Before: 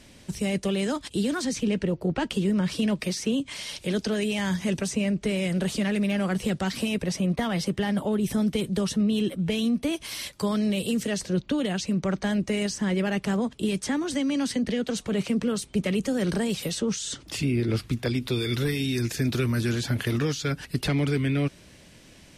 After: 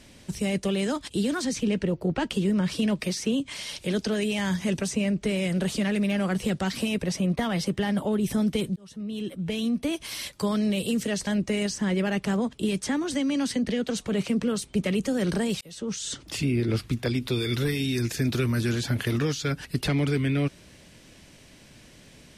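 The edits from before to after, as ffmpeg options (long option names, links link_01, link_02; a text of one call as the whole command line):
ffmpeg -i in.wav -filter_complex "[0:a]asplit=4[link_01][link_02][link_03][link_04];[link_01]atrim=end=8.76,asetpts=PTS-STARTPTS,afade=type=out:start_time=8.756:duration=0.004:curve=hsin[link_05];[link_02]atrim=start=8.76:end=11.272,asetpts=PTS-STARTPTS,afade=type=in:duration=1.54:curve=qsin[link_06];[link_03]atrim=start=12.268:end=16.61,asetpts=PTS-STARTPTS,afade=type=out:start_time=4.338:duration=0.004:curve=hsin[link_07];[link_04]atrim=start=16.61,asetpts=PTS-STARTPTS,afade=type=in:duration=0.46[link_08];[link_05][link_06]concat=n=2:v=0:a=1[link_09];[link_07][link_08]concat=n=2:v=0:a=1[link_10];[link_09][link_10]acrossfade=duration=0.004:curve1=hsin:curve2=hsin" out.wav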